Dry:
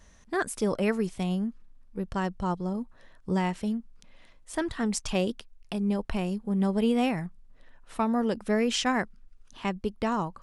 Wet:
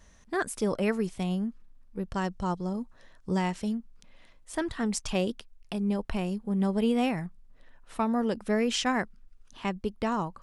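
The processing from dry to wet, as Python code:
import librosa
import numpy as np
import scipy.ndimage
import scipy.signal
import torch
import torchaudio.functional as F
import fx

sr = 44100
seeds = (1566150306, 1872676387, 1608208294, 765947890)

y = fx.peak_eq(x, sr, hz=6100.0, db=5.0, octaves=1.1, at=(2.14, 3.75))
y = F.gain(torch.from_numpy(y), -1.0).numpy()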